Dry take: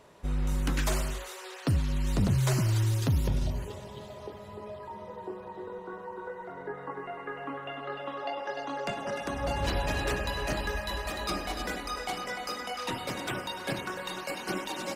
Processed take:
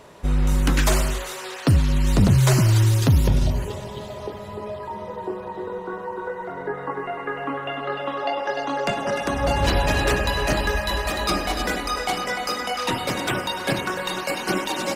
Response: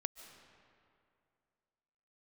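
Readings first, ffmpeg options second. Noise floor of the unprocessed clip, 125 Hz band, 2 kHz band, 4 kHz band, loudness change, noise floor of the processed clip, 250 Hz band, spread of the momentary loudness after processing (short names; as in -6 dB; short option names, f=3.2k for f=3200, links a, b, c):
-45 dBFS, +9.5 dB, +9.5 dB, +9.5 dB, +9.5 dB, -35 dBFS, +9.5 dB, 14 LU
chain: -filter_complex "[0:a]asplit=2[a][b];[1:a]atrim=start_sample=2205[c];[b][c]afir=irnorm=-1:irlink=0,volume=-12dB[d];[a][d]amix=inputs=2:normalize=0,volume=8dB"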